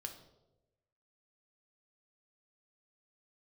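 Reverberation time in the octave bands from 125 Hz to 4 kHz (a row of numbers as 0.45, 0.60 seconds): 1.3, 1.0, 1.2, 0.85, 0.55, 0.65 seconds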